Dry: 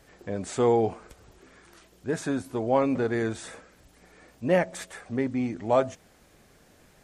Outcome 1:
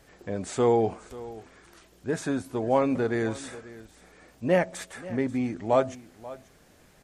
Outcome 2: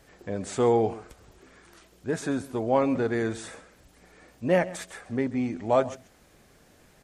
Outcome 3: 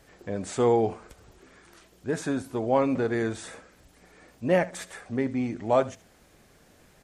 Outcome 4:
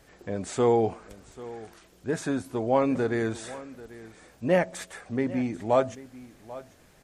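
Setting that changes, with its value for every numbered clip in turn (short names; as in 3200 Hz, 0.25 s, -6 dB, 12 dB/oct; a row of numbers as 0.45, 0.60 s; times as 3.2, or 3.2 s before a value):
echo, time: 536, 135, 74, 790 ms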